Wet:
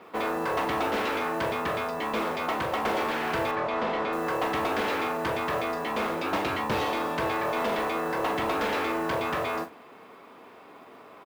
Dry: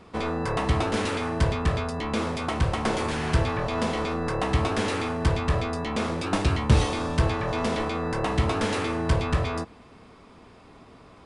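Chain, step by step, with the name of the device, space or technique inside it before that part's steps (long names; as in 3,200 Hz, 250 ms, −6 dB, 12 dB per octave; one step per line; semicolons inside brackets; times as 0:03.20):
carbon microphone (band-pass filter 360–2,900 Hz; soft clipping −25.5 dBFS, distortion −15 dB; noise that follows the level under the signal 23 dB)
parametric band 91 Hz +5 dB 0.22 octaves
0:03.51–0:04.13: high-frequency loss of the air 120 metres
double-tracking delay 42 ms −11 dB
level +4 dB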